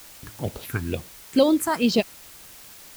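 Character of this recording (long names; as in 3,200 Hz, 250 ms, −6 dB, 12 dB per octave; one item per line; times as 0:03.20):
phaser sweep stages 4, 2.2 Hz, lowest notch 450–1,900 Hz
a quantiser's noise floor 8 bits, dither triangular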